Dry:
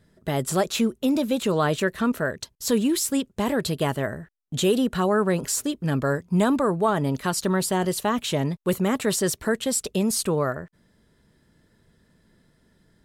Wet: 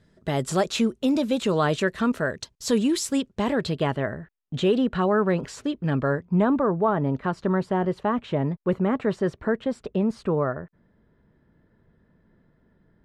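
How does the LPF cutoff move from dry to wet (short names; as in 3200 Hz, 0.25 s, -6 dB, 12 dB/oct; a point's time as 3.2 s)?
3.05 s 7200 Hz
4.03 s 3000 Hz
5.93 s 3000 Hz
6.51 s 1600 Hz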